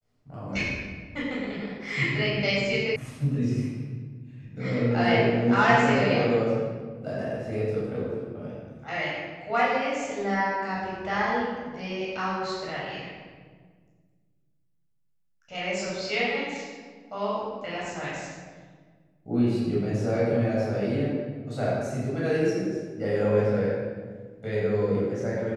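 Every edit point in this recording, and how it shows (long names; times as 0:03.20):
0:02.96: cut off before it has died away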